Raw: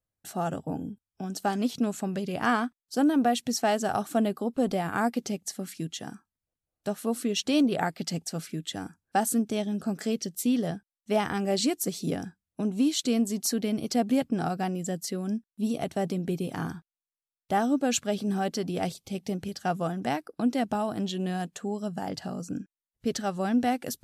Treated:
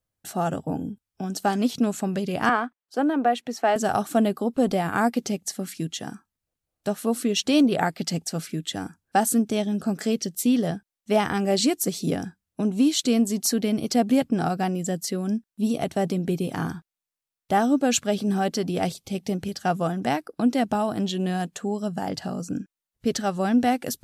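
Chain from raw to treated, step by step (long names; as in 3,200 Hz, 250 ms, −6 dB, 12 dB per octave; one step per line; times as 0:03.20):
0:02.49–0:03.76: three-way crossover with the lows and the highs turned down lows −13 dB, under 310 Hz, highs −14 dB, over 2,800 Hz
level +4.5 dB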